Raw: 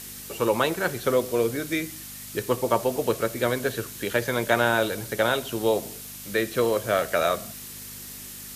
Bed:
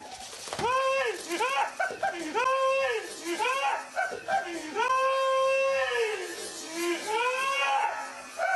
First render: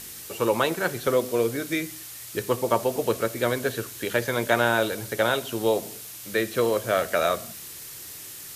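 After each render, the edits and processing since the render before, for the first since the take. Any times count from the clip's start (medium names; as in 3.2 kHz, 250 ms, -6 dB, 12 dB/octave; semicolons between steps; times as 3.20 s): de-hum 50 Hz, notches 5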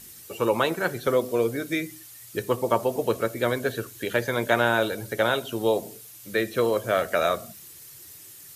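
noise reduction 9 dB, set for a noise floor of -41 dBFS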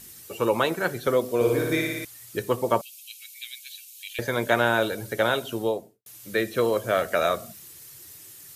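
1.35–2.05 s: flutter echo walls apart 10 m, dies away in 1.4 s; 2.81–4.19 s: Chebyshev high-pass 2.4 kHz, order 5; 5.49–6.06 s: studio fade out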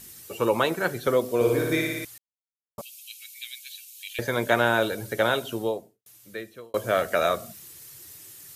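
2.18–2.78 s: mute; 5.46–6.74 s: fade out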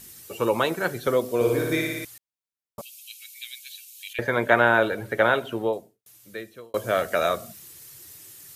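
4.13–5.73 s: FFT filter 150 Hz 0 dB, 1.9 kHz +5 dB, 5.4 kHz -10 dB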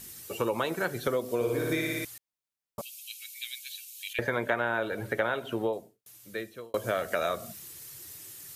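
compression 4:1, threshold -26 dBFS, peak gain reduction 12 dB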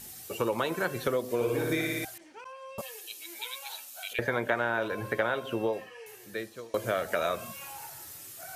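add bed -19.5 dB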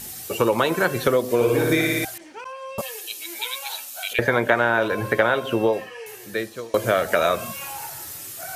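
trim +9.5 dB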